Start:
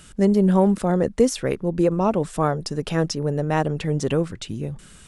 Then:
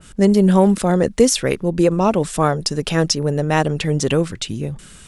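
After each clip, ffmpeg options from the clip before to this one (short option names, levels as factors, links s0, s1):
-af "adynamicequalizer=threshold=0.0141:dfrequency=1900:dqfactor=0.7:tfrequency=1900:tqfactor=0.7:attack=5:release=100:ratio=0.375:range=3.5:mode=boostabove:tftype=highshelf,volume=1.58"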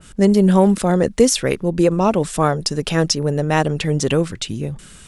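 -af anull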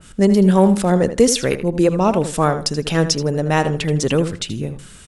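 -filter_complex "[0:a]asplit=2[s0][s1];[s1]adelay=79,lowpass=f=4600:p=1,volume=0.282,asplit=2[s2][s3];[s3]adelay=79,lowpass=f=4600:p=1,volume=0.22,asplit=2[s4][s5];[s5]adelay=79,lowpass=f=4600:p=1,volume=0.22[s6];[s0][s2][s4][s6]amix=inputs=4:normalize=0"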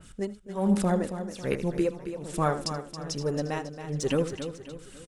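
-af "tremolo=f=1.2:d=1,aphaser=in_gain=1:out_gain=1:delay=4:decay=0.38:speed=1.3:type=sinusoidal,aecho=1:1:274|548|822|1096|1370:0.316|0.136|0.0585|0.0251|0.0108,volume=0.355"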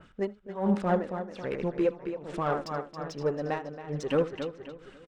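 -filter_complex "[0:a]adynamicsmooth=sensitivity=7:basefreq=3900,asplit=2[s0][s1];[s1]highpass=f=720:p=1,volume=4.47,asoftclip=type=tanh:threshold=0.251[s2];[s0][s2]amix=inputs=2:normalize=0,lowpass=f=1500:p=1,volume=0.501,tremolo=f=4.3:d=0.57"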